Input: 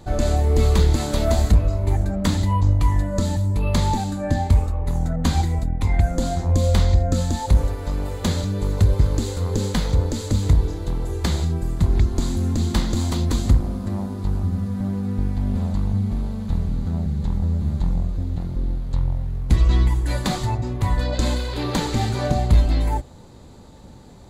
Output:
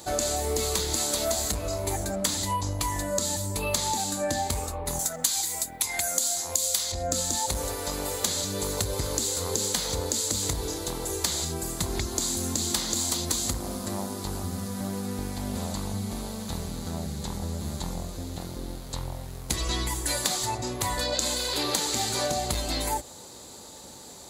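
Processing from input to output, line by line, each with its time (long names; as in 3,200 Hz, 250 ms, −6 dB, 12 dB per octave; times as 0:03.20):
0:04.99–0:06.92: spectral tilt +3.5 dB per octave
whole clip: high-pass filter 47 Hz; bass and treble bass −14 dB, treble +15 dB; downward compressor, threshold −26 dBFS; level +2 dB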